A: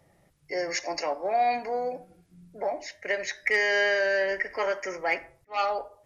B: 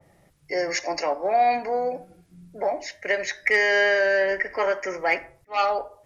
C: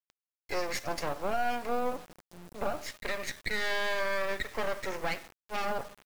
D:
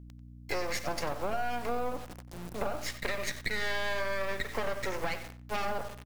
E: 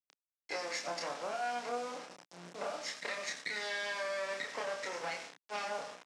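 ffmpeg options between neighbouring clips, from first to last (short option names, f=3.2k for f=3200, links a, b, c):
-af "adynamicequalizer=threshold=0.01:dfrequency=2500:dqfactor=0.7:tfrequency=2500:tqfactor=0.7:attack=5:release=100:ratio=0.375:range=2.5:mode=cutabove:tftype=highshelf,volume=4.5dB"
-af "alimiter=limit=-19dB:level=0:latency=1:release=285,aeval=exprs='max(val(0),0)':c=same,acrusher=bits=7:mix=0:aa=0.000001"
-filter_complex "[0:a]acompressor=threshold=-35dB:ratio=4,aeval=exprs='val(0)+0.00224*(sin(2*PI*60*n/s)+sin(2*PI*2*60*n/s)/2+sin(2*PI*3*60*n/s)/3+sin(2*PI*4*60*n/s)/4+sin(2*PI*5*60*n/s)/5)':c=same,asplit=2[a][b];[b]adelay=92,lowpass=f=4.5k:p=1,volume=-13dB,asplit=2[c][d];[d]adelay=92,lowpass=f=4.5k:p=1,volume=0.16[e];[a][c][e]amix=inputs=3:normalize=0,volume=6dB"
-filter_complex "[0:a]acrusher=bits=4:dc=4:mix=0:aa=0.000001,highpass=f=200:w=0.5412,highpass=f=200:w=1.3066,equalizer=f=220:t=q:w=4:g=-9,equalizer=f=370:t=q:w=4:g=-7,equalizer=f=5.4k:t=q:w=4:g=4,lowpass=f=8.2k:w=0.5412,lowpass=f=8.2k:w=1.3066,asplit=2[a][b];[b]adelay=29,volume=-3.5dB[c];[a][c]amix=inputs=2:normalize=0,volume=-5.5dB"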